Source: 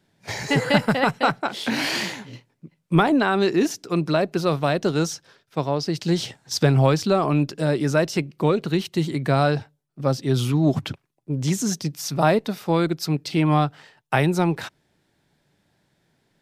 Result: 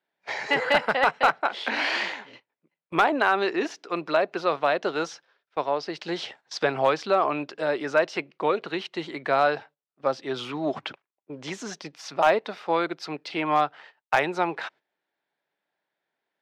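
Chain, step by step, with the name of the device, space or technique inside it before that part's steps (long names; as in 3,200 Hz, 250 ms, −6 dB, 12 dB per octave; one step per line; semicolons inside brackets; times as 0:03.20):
walkie-talkie (band-pass filter 570–2,900 Hz; hard clipping −13 dBFS, distortion −22 dB; noise gate −50 dBFS, range −12 dB)
level +2 dB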